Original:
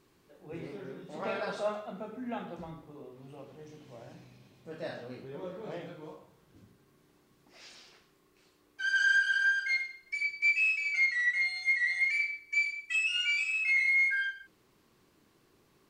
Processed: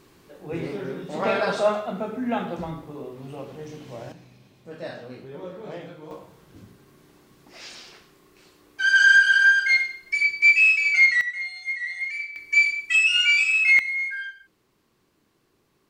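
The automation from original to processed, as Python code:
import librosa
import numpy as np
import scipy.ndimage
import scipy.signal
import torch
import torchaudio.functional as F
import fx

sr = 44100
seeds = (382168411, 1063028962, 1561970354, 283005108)

y = fx.gain(x, sr, db=fx.steps((0.0, 11.5), (4.12, 4.0), (6.11, 11.0), (11.21, -1.0), (12.36, 11.0), (13.79, -1.0)))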